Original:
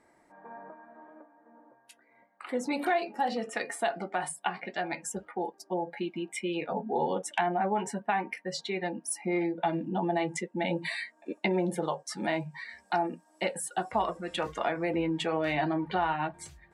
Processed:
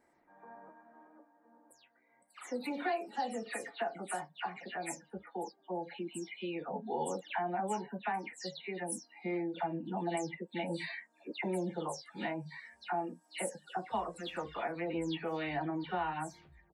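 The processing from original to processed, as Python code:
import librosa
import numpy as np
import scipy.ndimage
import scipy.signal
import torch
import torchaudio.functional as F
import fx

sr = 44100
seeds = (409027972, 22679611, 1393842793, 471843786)

y = fx.spec_delay(x, sr, highs='early', ms=184)
y = y * librosa.db_to_amplitude(-6.5)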